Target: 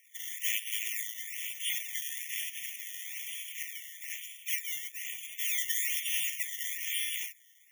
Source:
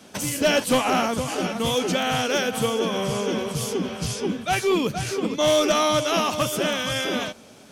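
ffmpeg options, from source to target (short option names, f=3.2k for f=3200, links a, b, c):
-filter_complex "[0:a]highpass=f=550:p=1,acrusher=samples=12:mix=1:aa=0.000001:lfo=1:lforange=12:lforate=1.1,asettb=1/sr,asplit=3[a][b][c];[a]atrim=end=0.514[d];[b]atrim=start=0.51:end=1.15,asetpts=PTS-STARTPTS,afade=t=in:d=0.004:c=qsin,afade=t=out:st=0.636:d=0.004:c=qsin,tremolo=f=110:d=0.621[e];[c]atrim=start=1.146[f];[d][e]acrossfade=d=0.004:c1=hsin:c2=qsin[g];[g][f]acrossfade=d=0.004:c1=qsin:c2=hsin,aexciter=amount=2.9:drive=5:freq=7.1k,asettb=1/sr,asplit=3[h][i][j];[h]atrim=end=2.014[k];[i]atrim=start=2.01:end=3.05,asetpts=PTS-STARTPTS,afade=t=in:d=0.004:c=qsin,afade=t=out:st=1.036:d=0.004:c=qsin,aeval=exprs='max(val(0),0)':c=same[l];[j]atrim=start=3.046[m];[k][l]acrossfade=d=0.004:c1=hsin:c2=qsin[n];[n][m]acrossfade=d=0.004:c1=qsin:c2=hsin,afftfilt=real='re*eq(mod(floor(b*sr/1024/1800),2),1)':imag='im*eq(mod(floor(b*sr/1024/1800),2),1)':win_size=1024:overlap=0.75,volume=-5dB"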